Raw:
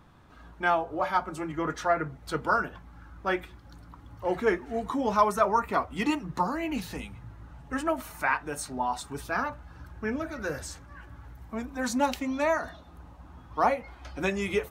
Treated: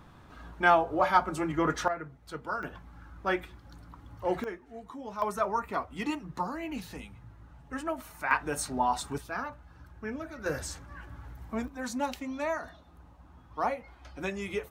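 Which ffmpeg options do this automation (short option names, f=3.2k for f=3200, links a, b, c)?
-af "asetnsamples=n=441:p=0,asendcmd='1.88 volume volume -9dB;2.63 volume volume -1dB;4.44 volume volume -13.5dB;5.22 volume volume -5.5dB;8.31 volume volume 2dB;9.18 volume volume -6dB;10.46 volume volume 1dB;11.68 volume volume -6dB',volume=3dB"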